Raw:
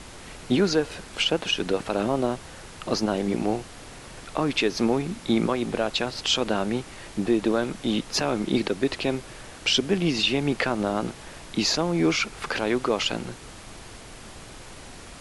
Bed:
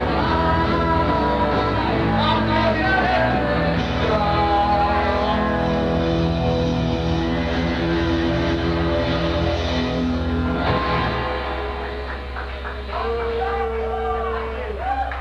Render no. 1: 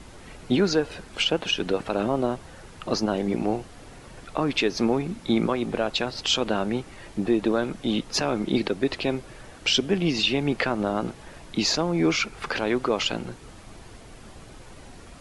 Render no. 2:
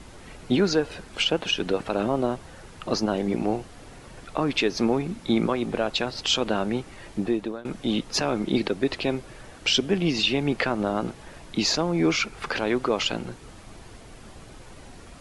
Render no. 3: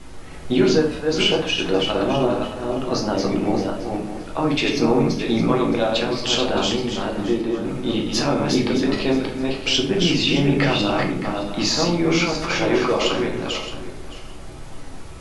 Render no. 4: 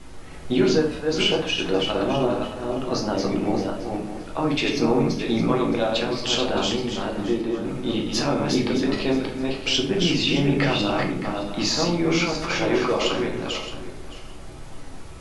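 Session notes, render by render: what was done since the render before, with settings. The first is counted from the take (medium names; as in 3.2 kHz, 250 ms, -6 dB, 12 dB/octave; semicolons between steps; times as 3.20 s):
noise reduction 7 dB, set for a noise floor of -43 dBFS
7.19–7.65 s: fade out, to -22.5 dB
backward echo that repeats 309 ms, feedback 41%, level -3.5 dB; simulated room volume 58 m³, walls mixed, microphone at 0.67 m
trim -2.5 dB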